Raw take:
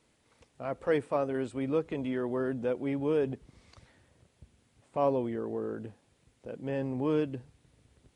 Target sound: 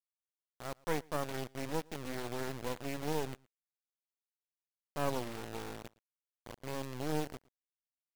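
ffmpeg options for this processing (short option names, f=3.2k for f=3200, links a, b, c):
-af "acrusher=bits=3:dc=4:mix=0:aa=0.000001,aecho=1:1:114:0.0668,aeval=exprs='0.188*(cos(1*acos(clip(val(0)/0.188,-1,1)))-cos(1*PI/2))+0.00944*(cos(7*acos(clip(val(0)/0.188,-1,1)))-cos(7*PI/2))':c=same,volume=-4dB"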